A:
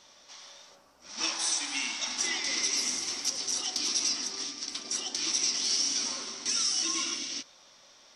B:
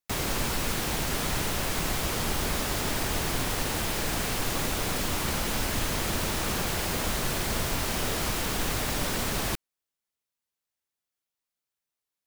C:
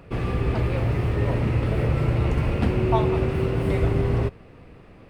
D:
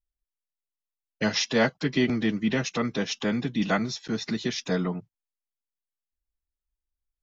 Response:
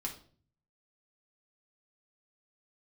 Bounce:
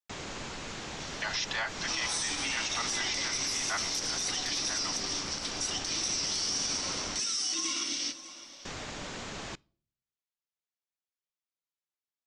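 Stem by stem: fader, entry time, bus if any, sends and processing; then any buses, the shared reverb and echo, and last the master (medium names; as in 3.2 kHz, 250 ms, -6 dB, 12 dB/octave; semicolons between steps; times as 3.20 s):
+0.5 dB, 0.70 s, send -9.5 dB, echo send -16 dB, peak limiter -21.5 dBFS, peak gain reduction 5 dB
-9.0 dB, 0.00 s, muted 7.20–8.65 s, send -21 dB, no echo send, elliptic low-pass 7.1 kHz, stop band 80 dB; bass shelf 82 Hz -9 dB
mute
-0.5 dB, 0.00 s, no send, no echo send, steep high-pass 770 Hz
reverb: on, RT60 0.45 s, pre-delay 4 ms
echo: delay 601 ms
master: peak limiter -22.5 dBFS, peak gain reduction 8 dB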